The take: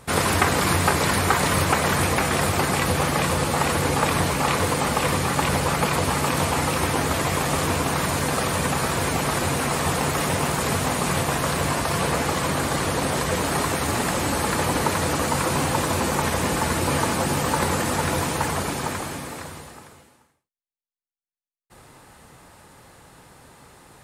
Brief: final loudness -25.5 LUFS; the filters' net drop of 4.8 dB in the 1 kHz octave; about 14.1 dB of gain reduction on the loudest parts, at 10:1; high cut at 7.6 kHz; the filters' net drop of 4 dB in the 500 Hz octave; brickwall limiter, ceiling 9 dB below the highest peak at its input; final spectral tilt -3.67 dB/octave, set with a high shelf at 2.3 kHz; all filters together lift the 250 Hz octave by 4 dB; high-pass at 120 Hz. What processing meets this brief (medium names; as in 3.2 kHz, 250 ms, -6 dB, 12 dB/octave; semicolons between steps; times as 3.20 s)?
high-pass 120 Hz; low-pass 7.6 kHz; peaking EQ 250 Hz +7.5 dB; peaking EQ 500 Hz -6 dB; peaking EQ 1 kHz -5.5 dB; treble shelf 2.3 kHz +4 dB; compression 10:1, threshold -32 dBFS; trim +12 dB; peak limiter -16.5 dBFS